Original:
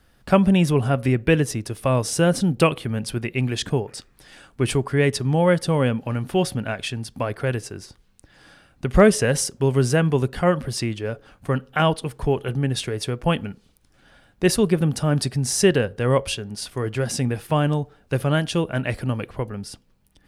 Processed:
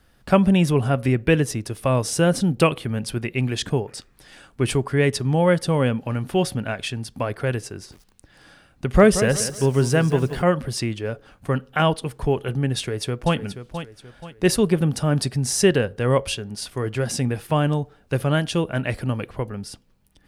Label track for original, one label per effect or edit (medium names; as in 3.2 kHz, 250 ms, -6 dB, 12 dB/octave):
7.740000	10.420000	bit-crushed delay 179 ms, feedback 35%, word length 7-bit, level -11.5 dB
12.780000	13.360000	echo throw 480 ms, feedback 40%, level -10.5 dB